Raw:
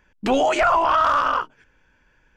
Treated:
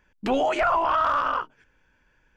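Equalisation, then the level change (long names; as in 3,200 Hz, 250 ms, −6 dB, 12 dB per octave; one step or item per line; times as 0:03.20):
dynamic equaliser 7,300 Hz, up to −7 dB, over −43 dBFS, Q 0.75
−4.0 dB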